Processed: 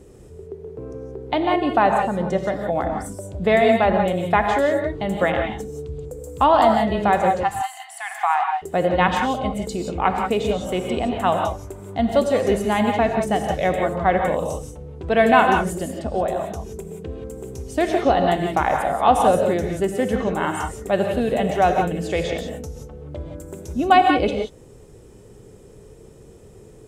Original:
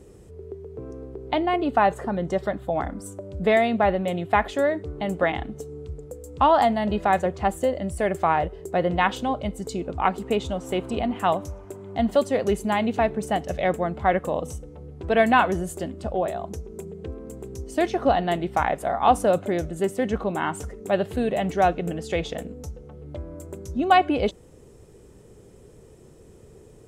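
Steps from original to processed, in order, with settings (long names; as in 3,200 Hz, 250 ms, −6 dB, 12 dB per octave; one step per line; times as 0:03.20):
0:07.43–0:08.62: linear-phase brick-wall high-pass 680 Hz
reverb whose tail is shaped and stops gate 200 ms rising, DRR 3 dB
level +2 dB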